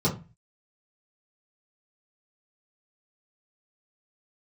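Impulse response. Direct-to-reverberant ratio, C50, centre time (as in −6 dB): −9.0 dB, 11.5 dB, 17 ms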